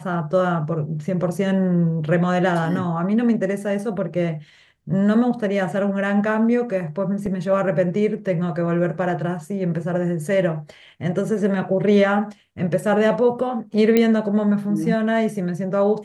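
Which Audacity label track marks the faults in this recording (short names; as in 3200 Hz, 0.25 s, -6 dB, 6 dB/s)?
7.260000	7.260000	gap 3.2 ms
13.970000	13.970000	pop -5 dBFS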